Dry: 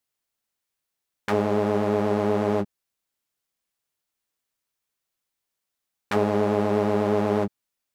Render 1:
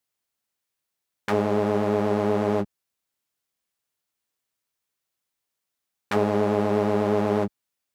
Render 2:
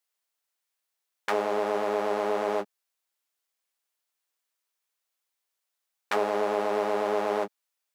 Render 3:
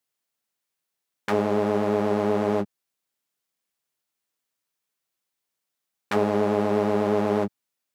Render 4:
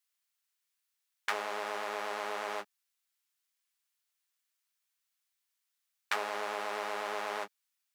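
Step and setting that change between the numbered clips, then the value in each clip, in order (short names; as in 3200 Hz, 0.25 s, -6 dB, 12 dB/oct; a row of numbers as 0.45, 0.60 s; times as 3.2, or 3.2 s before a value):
HPF, cutoff: 44, 500, 110, 1300 Hz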